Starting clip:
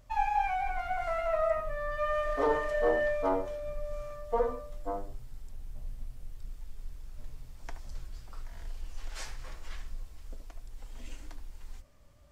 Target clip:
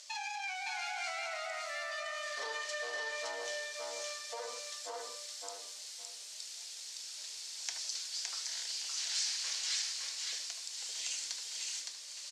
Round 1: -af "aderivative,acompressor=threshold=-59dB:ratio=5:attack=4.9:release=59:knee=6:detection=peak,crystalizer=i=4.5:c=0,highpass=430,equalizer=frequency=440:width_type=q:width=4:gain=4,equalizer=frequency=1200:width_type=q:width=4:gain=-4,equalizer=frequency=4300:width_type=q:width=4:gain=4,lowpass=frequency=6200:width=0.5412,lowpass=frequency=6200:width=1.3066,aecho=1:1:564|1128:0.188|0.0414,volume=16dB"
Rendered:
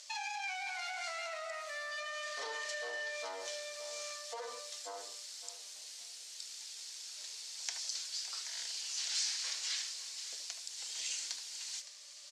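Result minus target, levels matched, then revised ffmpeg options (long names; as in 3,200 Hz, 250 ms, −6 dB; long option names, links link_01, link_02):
echo-to-direct −11.5 dB
-af "aderivative,acompressor=threshold=-59dB:ratio=5:attack=4.9:release=59:knee=6:detection=peak,crystalizer=i=4.5:c=0,highpass=430,equalizer=frequency=440:width_type=q:width=4:gain=4,equalizer=frequency=1200:width_type=q:width=4:gain=-4,equalizer=frequency=4300:width_type=q:width=4:gain=4,lowpass=frequency=6200:width=0.5412,lowpass=frequency=6200:width=1.3066,aecho=1:1:564|1128|1692:0.708|0.156|0.0343,volume=16dB"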